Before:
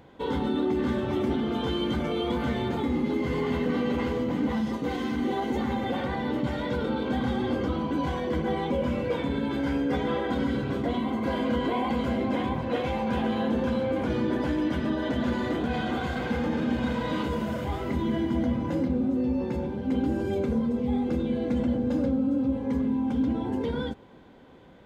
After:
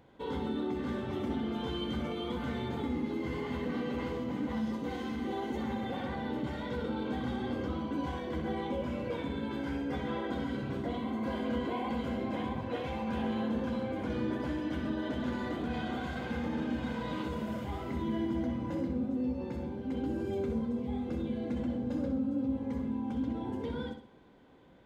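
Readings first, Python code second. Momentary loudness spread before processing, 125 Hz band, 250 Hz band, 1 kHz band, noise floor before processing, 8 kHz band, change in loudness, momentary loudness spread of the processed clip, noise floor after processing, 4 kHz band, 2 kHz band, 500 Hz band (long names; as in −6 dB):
3 LU, −7.0 dB, −7.0 dB, −7.5 dB, −33 dBFS, can't be measured, −7.5 dB, 3 LU, −40 dBFS, −7.0 dB, −7.0 dB, −8.0 dB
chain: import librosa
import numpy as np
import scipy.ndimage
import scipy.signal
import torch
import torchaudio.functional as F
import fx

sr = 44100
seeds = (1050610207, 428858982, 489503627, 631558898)

y = fx.room_flutter(x, sr, wall_m=10.9, rt60_s=0.46)
y = y * librosa.db_to_amplitude(-8.0)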